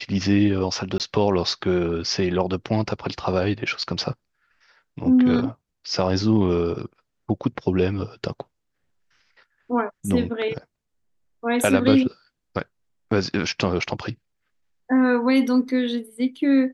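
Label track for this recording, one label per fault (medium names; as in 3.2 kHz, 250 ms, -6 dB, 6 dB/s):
0.980000	1.000000	dropout 18 ms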